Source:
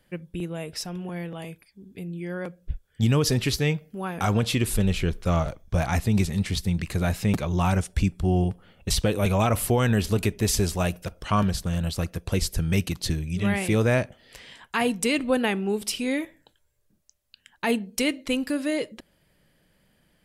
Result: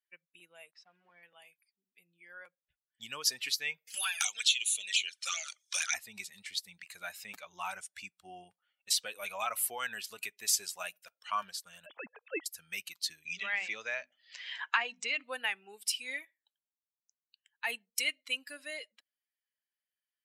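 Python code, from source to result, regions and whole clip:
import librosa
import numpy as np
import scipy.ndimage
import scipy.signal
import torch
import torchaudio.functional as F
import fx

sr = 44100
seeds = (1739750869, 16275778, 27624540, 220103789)

y = fx.chain(x, sr, fx.sample_gate(floor_db=-40.5),
    fx.spacing_loss(db_at_10k=28), at=(0.71, 1.23))
y = fx.chain(y, sr, fx.weighting(curve='ITU-R 468'),
    fx.env_flanger(rest_ms=4.4, full_db=-22.0),
    fx.band_squash(depth_pct=100), at=(3.87, 5.94))
y = fx.chain(y, sr, fx.sine_speech(),
    fx.tilt_eq(slope=-4.0), at=(11.86, 12.46))
y = fx.chain(y, sr, fx.steep_lowpass(hz=7100.0, slope=48),
    fx.hum_notches(base_hz=50, count=7),
    fx.band_squash(depth_pct=100), at=(13.25, 15.24))
y = fx.bin_expand(y, sr, power=1.5)
y = scipy.signal.sosfilt(scipy.signal.butter(2, 1400.0, 'highpass', fs=sr, output='sos'), y)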